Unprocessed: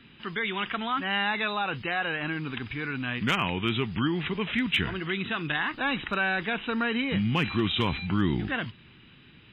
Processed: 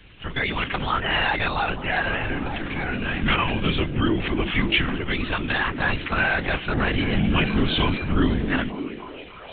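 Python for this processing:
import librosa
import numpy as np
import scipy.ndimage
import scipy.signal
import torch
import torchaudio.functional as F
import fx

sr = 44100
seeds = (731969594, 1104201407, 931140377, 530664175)

y = fx.lpc_vocoder(x, sr, seeds[0], excitation='whisper', order=10)
y = fx.echo_stepped(y, sr, ms=300, hz=240.0, octaves=0.7, feedback_pct=70, wet_db=-3.5)
y = y * 10.0 ** (5.0 / 20.0)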